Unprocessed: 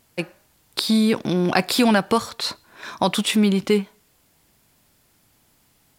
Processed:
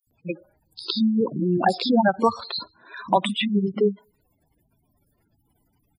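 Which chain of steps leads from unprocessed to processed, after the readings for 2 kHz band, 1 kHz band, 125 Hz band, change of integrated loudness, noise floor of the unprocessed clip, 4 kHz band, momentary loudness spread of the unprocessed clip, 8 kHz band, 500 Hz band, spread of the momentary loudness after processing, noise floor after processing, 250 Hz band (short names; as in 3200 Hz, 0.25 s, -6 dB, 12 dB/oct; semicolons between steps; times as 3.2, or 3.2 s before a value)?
-4.5 dB, +2.0 dB, -3.0 dB, -2.5 dB, -62 dBFS, -4.5 dB, 15 LU, -16.0 dB, -1.0 dB, 16 LU, -70 dBFS, -3.0 dB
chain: spectral gate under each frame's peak -10 dB strong; dynamic EQ 830 Hz, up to +5 dB, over -35 dBFS, Q 2.3; three bands offset in time highs, lows, mids 70/110 ms, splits 200/5700 Hz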